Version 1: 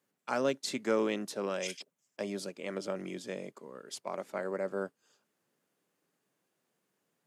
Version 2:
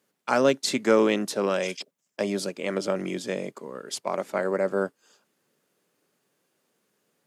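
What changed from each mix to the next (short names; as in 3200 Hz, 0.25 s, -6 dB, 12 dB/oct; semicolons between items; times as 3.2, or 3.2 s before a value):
first voice +9.5 dB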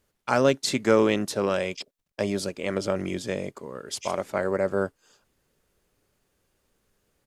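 second voice: entry +2.40 s; master: remove HPF 160 Hz 24 dB/oct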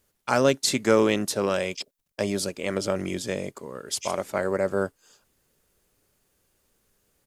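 master: add high shelf 6200 Hz +8.5 dB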